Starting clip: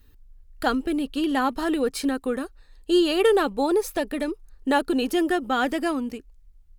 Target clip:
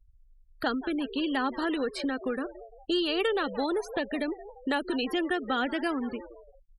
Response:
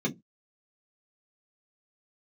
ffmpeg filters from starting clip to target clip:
-filter_complex "[0:a]asplit=2[a][b];[b]asplit=4[c][d][e][f];[c]adelay=172,afreqshift=100,volume=-18dB[g];[d]adelay=344,afreqshift=200,volume=-23.8dB[h];[e]adelay=516,afreqshift=300,volume=-29.7dB[i];[f]adelay=688,afreqshift=400,volume=-35.5dB[j];[g][h][i][j]amix=inputs=4:normalize=0[k];[a][k]amix=inputs=2:normalize=0,acrossover=split=82|580|1200|4500[l][m][n][o][p];[l]acompressor=threshold=-56dB:ratio=4[q];[m]acompressor=threshold=-30dB:ratio=4[r];[n]acompressor=threshold=-39dB:ratio=4[s];[o]acompressor=threshold=-30dB:ratio=4[t];[p]acompressor=threshold=-45dB:ratio=4[u];[q][r][s][t][u]amix=inputs=5:normalize=0,afftfilt=real='re*gte(hypot(re,im),0.0141)':imag='im*gte(hypot(re,im),0.0141)':win_size=1024:overlap=0.75"

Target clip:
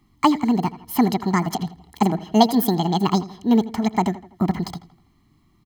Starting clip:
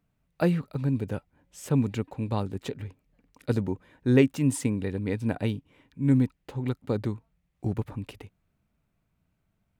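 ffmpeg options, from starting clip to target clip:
-filter_complex "[0:a]aecho=1:1:1.7:0.96,asplit=2[a][b];[b]acompressor=threshold=-36dB:ratio=6,volume=-2dB[c];[a][c]amix=inputs=2:normalize=0,asplit=2[d][e];[e]adelay=143,lowpass=f=2.3k:p=1,volume=-16dB,asplit=2[f][g];[g]adelay=143,lowpass=f=2.3k:p=1,volume=0.46,asplit=2[h][i];[i]adelay=143,lowpass=f=2.3k:p=1,volume=0.46,asplit=2[j][k];[k]adelay=143,lowpass=f=2.3k:p=1,volume=0.46[l];[d][f][h][j][l]amix=inputs=5:normalize=0,asetrate=76440,aresample=44100,volume=5dB"

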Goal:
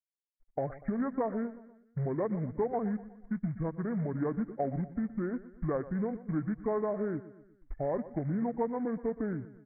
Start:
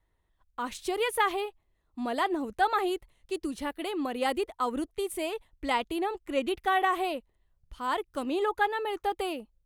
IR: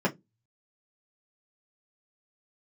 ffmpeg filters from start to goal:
-af "afftfilt=real='re*gte(hypot(re,im),0.01)':imag='im*gte(hypot(re,im),0.01)':win_size=1024:overlap=0.75,lowpass=1.4k,acompressor=threshold=-43dB:ratio=3,crystalizer=i=3:c=0,aresample=8000,acrusher=bits=6:mode=log:mix=0:aa=0.000001,aresample=44100,asetrate=24750,aresample=44100,atempo=1.7818,aecho=1:1:121|242|363|484:0.158|0.0777|0.0381|0.0186,volume=9dB"

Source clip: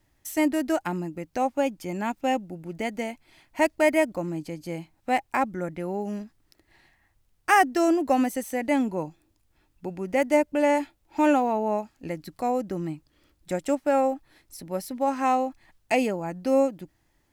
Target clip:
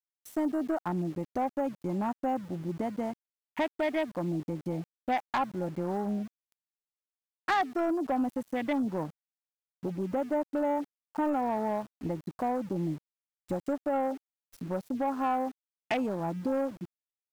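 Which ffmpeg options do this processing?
-filter_complex "[0:a]asettb=1/sr,asplit=3[a][b][c];[a]atrim=end=4.404[d];[b]atrim=start=4.4:end=7.9,asetpts=PTS-STARTPTS,afade=t=in:d=0.004:c=qsin,afade=t=out:st=3.496:d=0.004:c=qsin,adynamicequalizer=threshold=0.0224:dfrequency=1100:dqfactor=0.89:tfrequency=1100:tqfactor=0.89:attack=5:release=100:ratio=0.375:range=3:mode=boostabove:tftype=bell[e];[c]atrim=start=7.896[f];[d][e]acrossfade=d=0.004:c1=hsin:c2=qsin[g];[g][f]acrossfade=d=0.004:c1=qsin:c2=hsin,acompressor=threshold=-33dB:ratio=2.5,afwtdn=0.0141,asoftclip=type=tanh:threshold=-25.5dB,equalizer=f=460:w=2.1:g=-4,aeval=exprs='val(0)*gte(abs(val(0)),0.00237)':c=same,volume=5.5dB"

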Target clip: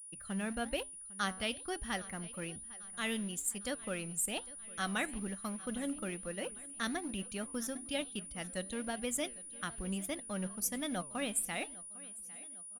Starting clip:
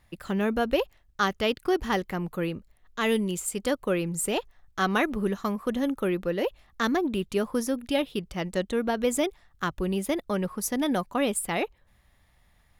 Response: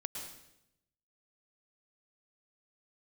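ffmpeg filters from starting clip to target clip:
-filter_complex "[0:a]bandreject=f=135.7:t=h:w=4,bandreject=f=271.4:t=h:w=4,afftdn=nr=12:nf=-45,equalizer=f=160:t=o:w=0.67:g=-4,equalizer=f=400:t=o:w=0.67:g=-12,equalizer=f=1k:t=o:w=0.67:g=-8,agate=range=-45dB:threshold=-59dB:ratio=16:detection=peak,highshelf=f=5.1k:g=4.5,flanger=delay=4.9:depth=5.8:regen=89:speed=1.1:shape=sinusoidal,asplit=2[a][b];[b]aeval=exprs='val(0)*gte(abs(val(0)),0.015)':c=same,volume=-12dB[c];[a][c]amix=inputs=2:normalize=0,aeval=exprs='val(0)+0.00708*sin(2*PI*9700*n/s)':c=same,aecho=1:1:803|1606|2409|3212:0.1|0.053|0.0281|0.0149,volume=-4.5dB"

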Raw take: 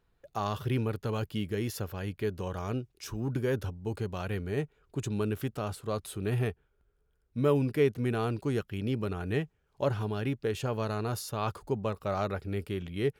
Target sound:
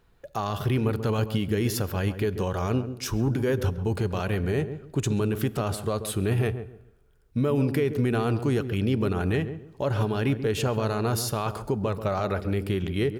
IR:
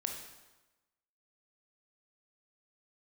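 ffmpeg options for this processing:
-filter_complex "[0:a]alimiter=level_in=3dB:limit=-24dB:level=0:latency=1:release=98,volume=-3dB,asplit=2[a][b];[b]adelay=136,lowpass=f=810:p=1,volume=-9dB,asplit=2[c][d];[d]adelay=136,lowpass=f=810:p=1,volume=0.28,asplit=2[e][f];[f]adelay=136,lowpass=f=810:p=1,volume=0.28[g];[a][c][e][g]amix=inputs=4:normalize=0,asplit=2[h][i];[1:a]atrim=start_sample=2205[j];[i][j]afir=irnorm=-1:irlink=0,volume=-15dB[k];[h][k]amix=inputs=2:normalize=0,volume=8.5dB"

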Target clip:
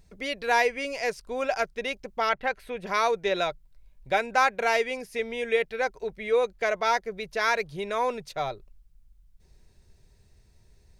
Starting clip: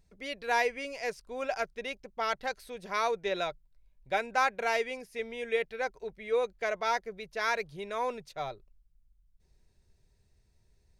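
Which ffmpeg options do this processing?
-filter_complex "[0:a]asettb=1/sr,asplit=3[a][b][c];[a]atrim=end=2.294[d];[b]atrim=start=2.29:end=2.87,asetpts=PTS-STARTPTS,afade=t=in:d=0.004:c=qsin,afade=t=out:st=0.576:d=0.004:c=qsin,highshelf=f=3.5k:t=q:w=1.5:g=-9.5[e];[c]atrim=start=2.866[f];[d][e]acrossfade=d=0.004:c1=hsin:c2=qsin[g];[g][f]acrossfade=d=0.004:c1=qsin:c2=hsin,asplit=2[h][i];[i]acompressor=threshold=-41dB:ratio=6,volume=-2dB[j];[h][j]amix=inputs=2:normalize=0,volume=4dB"

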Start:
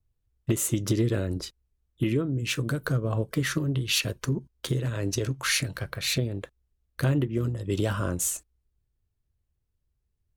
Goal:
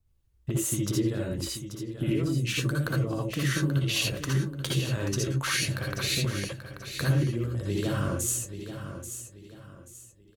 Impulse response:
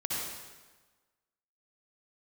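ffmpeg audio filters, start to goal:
-filter_complex "[0:a]acompressor=threshold=-32dB:ratio=4,aecho=1:1:834|1668|2502|3336:0.316|0.104|0.0344|0.0114[a];[1:a]atrim=start_sample=2205,atrim=end_sample=3969[b];[a][b]afir=irnorm=-1:irlink=0,volume=4dB"

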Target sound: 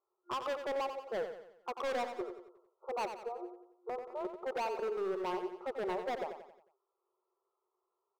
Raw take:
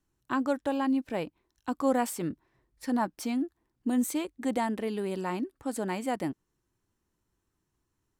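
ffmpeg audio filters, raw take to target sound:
-af "afftfilt=real='re*between(b*sr/4096,350,1400)':imag='im*between(b*sr/4096,350,1400)':win_size=4096:overlap=0.75,asoftclip=type=hard:threshold=-35dB,aecho=1:1:90|180|270|360|450:0.376|0.173|0.0795|0.0366|0.0168,volume=2dB"

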